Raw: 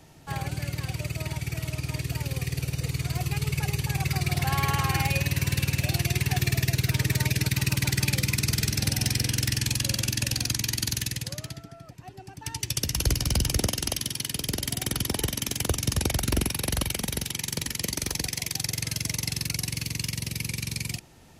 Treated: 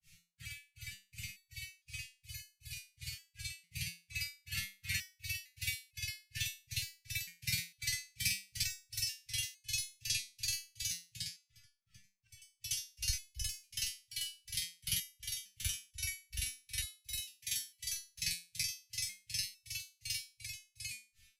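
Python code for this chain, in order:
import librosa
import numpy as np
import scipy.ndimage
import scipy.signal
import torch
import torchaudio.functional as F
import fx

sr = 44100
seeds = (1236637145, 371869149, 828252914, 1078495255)

y = scipy.signal.sosfilt(scipy.signal.ellip(3, 1.0, 50, [110.0, 2200.0], 'bandstop', fs=sr, output='sos'), x)
y = fx.granulator(y, sr, seeds[0], grain_ms=226.0, per_s=2.7, spray_ms=100.0, spread_st=0)
y = fx.resonator_held(y, sr, hz=2.2, low_hz=170.0, high_hz=430.0)
y = y * 10.0 ** (11.5 / 20.0)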